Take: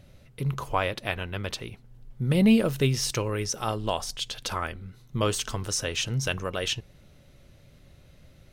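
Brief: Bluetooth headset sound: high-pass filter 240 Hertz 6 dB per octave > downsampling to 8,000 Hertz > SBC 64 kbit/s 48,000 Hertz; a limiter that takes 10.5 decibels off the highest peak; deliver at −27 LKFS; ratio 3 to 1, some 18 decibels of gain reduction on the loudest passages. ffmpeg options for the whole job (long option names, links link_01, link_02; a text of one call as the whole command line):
ffmpeg -i in.wav -af "acompressor=threshold=-41dB:ratio=3,alimiter=level_in=9dB:limit=-24dB:level=0:latency=1,volume=-9dB,highpass=frequency=240:poles=1,aresample=8000,aresample=44100,volume=20dB" -ar 48000 -c:a sbc -b:a 64k out.sbc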